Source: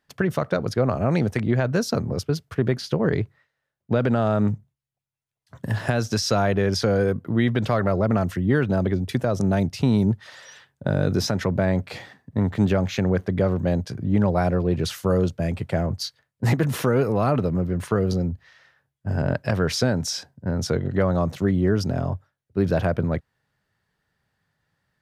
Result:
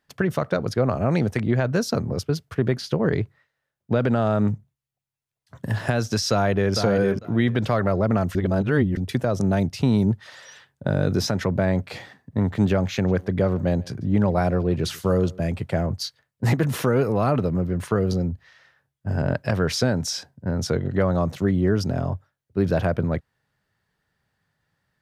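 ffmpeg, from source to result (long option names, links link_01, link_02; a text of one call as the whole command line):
ffmpeg -i in.wav -filter_complex "[0:a]asplit=2[link_01][link_02];[link_02]afade=type=in:start_time=6.31:duration=0.01,afade=type=out:start_time=6.73:duration=0.01,aecho=0:1:450|900|1350:0.501187|0.0751781|0.0112767[link_03];[link_01][link_03]amix=inputs=2:normalize=0,asplit=3[link_04][link_05][link_06];[link_04]afade=type=out:start_time=13.07:duration=0.02[link_07];[link_05]aecho=1:1:144:0.0668,afade=type=in:start_time=13.07:duration=0.02,afade=type=out:start_time=15.48:duration=0.02[link_08];[link_06]afade=type=in:start_time=15.48:duration=0.02[link_09];[link_07][link_08][link_09]amix=inputs=3:normalize=0,asplit=3[link_10][link_11][link_12];[link_10]atrim=end=8.352[link_13];[link_11]atrim=start=8.348:end=8.972,asetpts=PTS-STARTPTS,areverse[link_14];[link_12]atrim=start=8.968[link_15];[link_13][link_14]acrossfade=duration=0.004:curve1=hsin:curve2=hsin[link_16];[link_16][link_15]acrossfade=duration=0.004:curve1=hsin:curve2=hsin" out.wav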